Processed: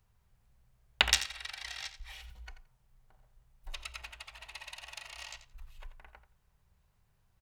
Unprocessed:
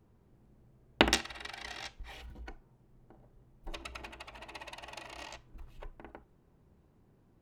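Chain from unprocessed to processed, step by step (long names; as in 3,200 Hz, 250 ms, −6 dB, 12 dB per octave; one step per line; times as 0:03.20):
guitar amp tone stack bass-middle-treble 10-0-10
on a send: repeating echo 86 ms, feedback 16%, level −12.5 dB
on the sum: level +5 dB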